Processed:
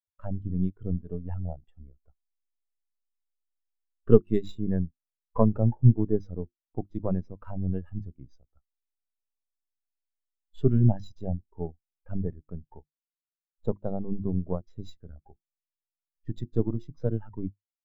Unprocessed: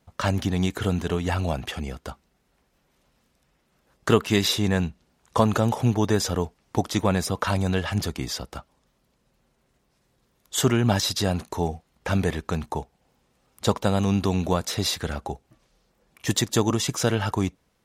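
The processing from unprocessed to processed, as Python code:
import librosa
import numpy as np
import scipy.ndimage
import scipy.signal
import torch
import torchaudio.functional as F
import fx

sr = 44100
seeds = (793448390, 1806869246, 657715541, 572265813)

p1 = np.where(x < 0.0, 10.0 ** (-12.0 / 20.0) * x, x)
p2 = fx.high_shelf(p1, sr, hz=9200.0, db=-8.0)
p3 = fx.hum_notches(p2, sr, base_hz=50, count=7)
p4 = fx.backlash(p3, sr, play_db=-32.5)
p5 = p3 + (p4 * 10.0 ** (-5.5 / 20.0))
p6 = np.repeat(p5[::4], 4)[:len(p5)]
y = fx.spectral_expand(p6, sr, expansion=2.5)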